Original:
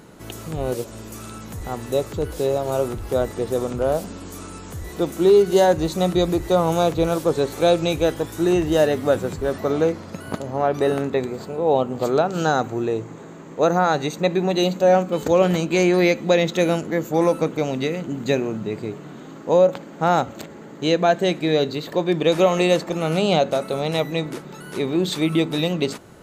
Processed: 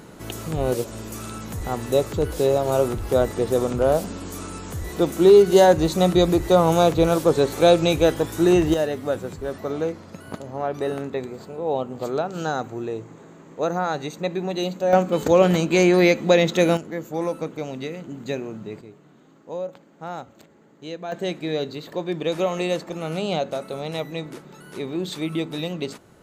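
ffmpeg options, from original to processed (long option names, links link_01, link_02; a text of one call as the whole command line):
ffmpeg -i in.wav -af "asetnsamples=nb_out_samples=441:pad=0,asendcmd='8.74 volume volume -6dB;14.93 volume volume 1dB;16.77 volume volume -7.5dB;18.81 volume volume -15dB;21.12 volume volume -6.5dB',volume=2dB" out.wav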